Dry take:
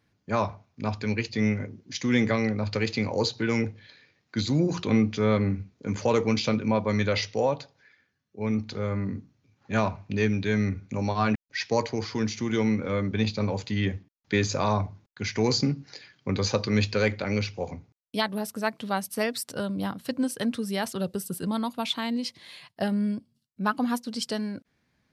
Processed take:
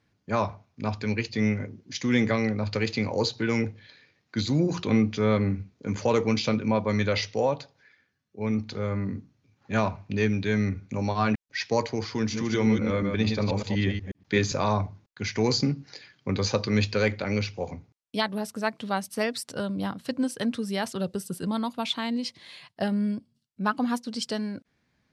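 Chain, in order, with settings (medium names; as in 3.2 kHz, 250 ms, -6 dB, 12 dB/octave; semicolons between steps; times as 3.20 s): 12.18–14.52 s: chunks repeated in reverse 121 ms, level -5 dB; low-pass 9.3 kHz 12 dB/octave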